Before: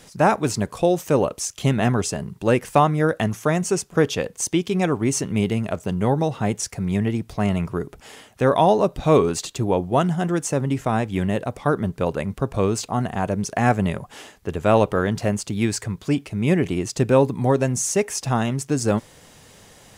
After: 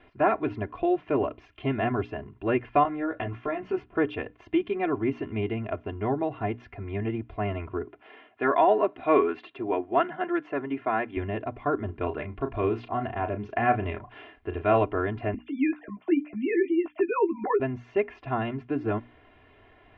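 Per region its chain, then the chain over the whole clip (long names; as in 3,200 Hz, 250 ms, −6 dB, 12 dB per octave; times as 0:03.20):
0:02.83–0:03.86: downward compressor 5 to 1, threshold −20 dBFS + double-tracking delay 16 ms −3 dB
0:07.84–0:11.17: dynamic equaliser 1,700 Hz, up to +7 dB, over −37 dBFS, Q 1.3 + high-pass filter 240 Hz
0:11.85–0:14.84: high-shelf EQ 5,100 Hz +8 dB + double-tracking delay 34 ms −9 dB
0:15.34–0:17.60: three sine waves on the formant tracks + double-tracking delay 15 ms −7.5 dB
whole clip: Butterworth low-pass 2,800 Hz 36 dB per octave; mains-hum notches 60/120/180/240/300 Hz; comb filter 2.9 ms, depth 96%; level −8 dB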